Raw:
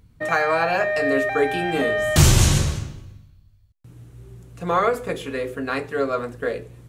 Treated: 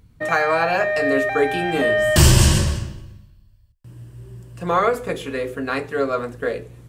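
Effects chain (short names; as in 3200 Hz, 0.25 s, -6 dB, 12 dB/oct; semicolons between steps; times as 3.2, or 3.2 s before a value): 1.82–4.67 ripple EQ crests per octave 1.3, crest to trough 7 dB; gain +1.5 dB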